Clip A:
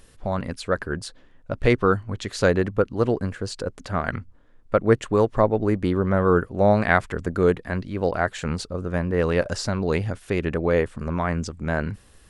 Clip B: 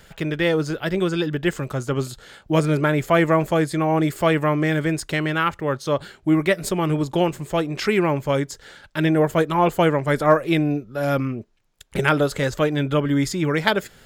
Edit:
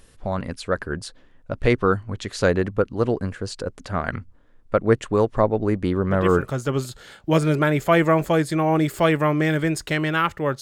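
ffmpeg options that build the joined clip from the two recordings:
-filter_complex "[1:a]asplit=2[s0][s1];[0:a]apad=whole_dur=10.61,atrim=end=10.61,atrim=end=6.492[s2];[s1]atrim=start=1.708:end=5.83[s3];[s0]atrim=start=1.31:end=1.71,asetpts=PTS-STARTPTS,volume=0.473,afade=t=in:d=0.004:c=hsin,afade=t=out:st=0.396:d=0.004:c=hsin,adelay=6090[s4];[s2][s3]acrossfade=d=0.004:c1=hsin:c2=hsin[s5];[s5][s4]amix=inputs=2:normalize=0"

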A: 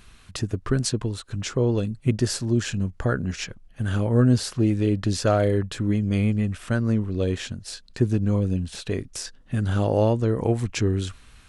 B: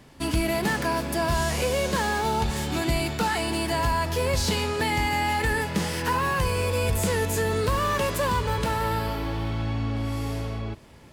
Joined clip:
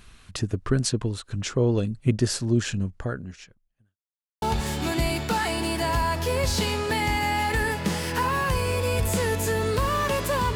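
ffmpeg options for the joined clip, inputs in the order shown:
-filter_complex "[0:a]apad=whole_dur=10.55,atrim=end=10.55,asplit=2[s0][s1];[s0]atrim=end=3.97,asetpts=PTS-STARTPTS,afade=t=out:st=2.71:d=1.26:c=qua[s2];[s1]atrim=start=3.97:end=4.42,asetpts=PTS-STARTPTS,volume=0[s3];[1:a]atrim=start=2.32:end=8.45,asetpts=PTS-STARTPTS,afade=t=in:d=0.004:c=hsin[s4];[s2][s3][s4]concat=n=3:v=0:a=1"

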